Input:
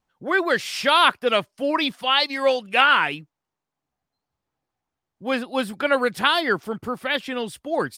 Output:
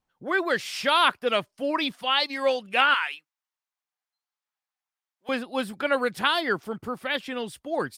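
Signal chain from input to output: 2.94–5.29 HPF 1300 Hz 12 dB/oct; gain -4 dB

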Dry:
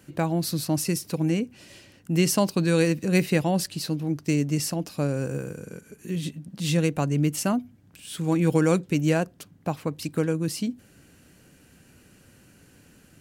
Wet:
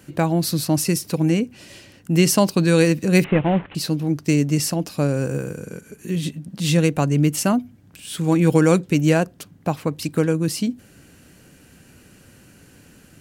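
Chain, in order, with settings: 3.24–3.75 CVSD 16 kbps; gain +5.5 dB

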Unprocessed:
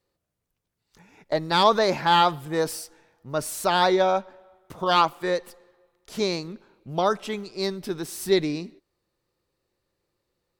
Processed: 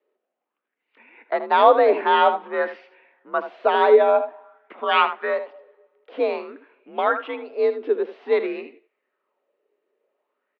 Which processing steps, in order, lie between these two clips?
mistuned SSB +56 Hz 230–3000 Hz; echo 78 ms -11.5 dB; LFO bell 0.51 Hz 390–2400 Hz +11 dB

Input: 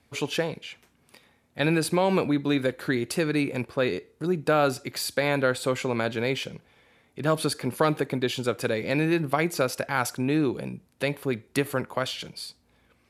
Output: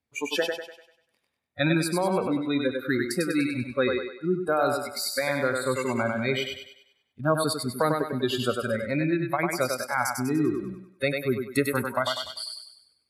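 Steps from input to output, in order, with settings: spectral noise reduction 24 dB; 8.51–9.3 high shelf 4000 Hz -11 dB; on a send: thinning echo 98 ms, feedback 44%, high-pass 280 Hz, level -3.5 dB; on the sum: vocal rider within 3 dB 0.5 s

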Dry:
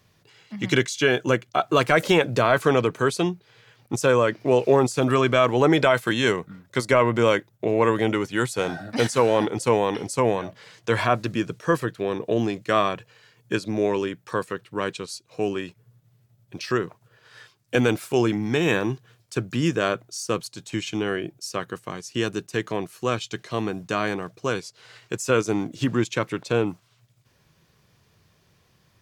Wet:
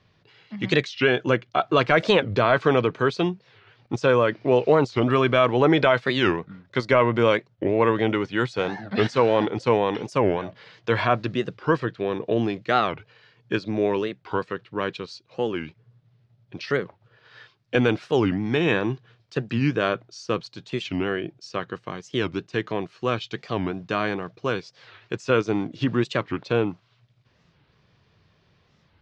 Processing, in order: LPF 4600 Hz 24 dB/oct; record warp 45 rpm, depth 250 cents

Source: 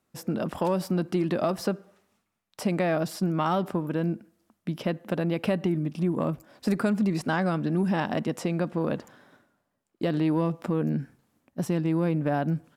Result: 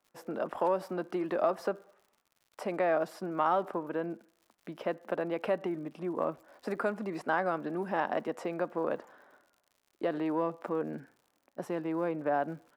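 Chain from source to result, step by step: three-band isolator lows -21 dB, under 360 Hz, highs -14 dB, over 2000 Hz; crackle 100/s -52 dBFS

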